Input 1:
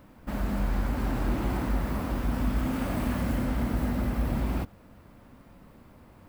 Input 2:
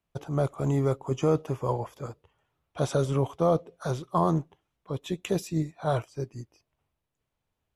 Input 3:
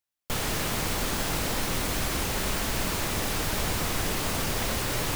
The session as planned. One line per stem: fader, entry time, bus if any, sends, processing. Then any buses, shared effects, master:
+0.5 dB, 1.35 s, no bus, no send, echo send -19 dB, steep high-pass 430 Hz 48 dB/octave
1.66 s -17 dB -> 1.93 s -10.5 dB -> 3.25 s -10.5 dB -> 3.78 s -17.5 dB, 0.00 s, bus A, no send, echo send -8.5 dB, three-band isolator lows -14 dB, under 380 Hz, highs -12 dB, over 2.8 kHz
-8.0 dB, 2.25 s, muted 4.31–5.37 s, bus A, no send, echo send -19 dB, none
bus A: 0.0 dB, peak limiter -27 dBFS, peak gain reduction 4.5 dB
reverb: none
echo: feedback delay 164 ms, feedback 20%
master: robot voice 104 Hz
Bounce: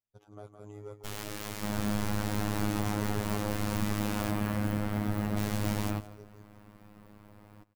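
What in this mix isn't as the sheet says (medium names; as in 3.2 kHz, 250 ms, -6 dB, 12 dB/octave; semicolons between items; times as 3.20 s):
stem 1: missing steep high-pass 430 Hz 48 dB/octave; stem 2: missing three-band isolator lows -14 dB, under 380 Hz, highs -12 dB, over 2.8 kHz; stem 3: entry 2.25 s -> 0.75 s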